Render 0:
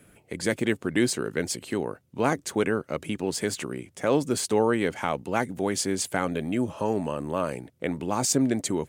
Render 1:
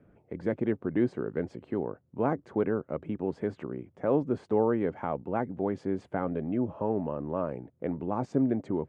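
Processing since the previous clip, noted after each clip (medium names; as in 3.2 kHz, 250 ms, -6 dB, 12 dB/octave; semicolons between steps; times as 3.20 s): low-pass 1 kHz 12 dB/octave; trim -2.5 dB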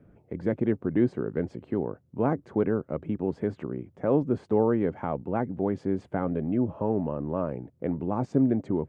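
bass shelf 300 Hz +6 dB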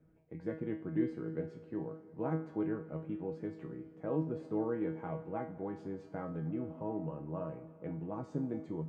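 feedback comb 160 Hz, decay 0.38 s, harmonics all, mix 90%; reverberation RT60 2.8 s, pre-delay 84 ms, DRR 14.5 dB; trim +1 dB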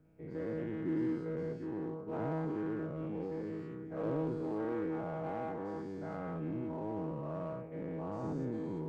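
every event in the spectrogram widened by 240 ms; in parallel at -5.5 dB: hard clipper -34.5 dBFS, distortion -6 dB; on the sum: trim -8 dB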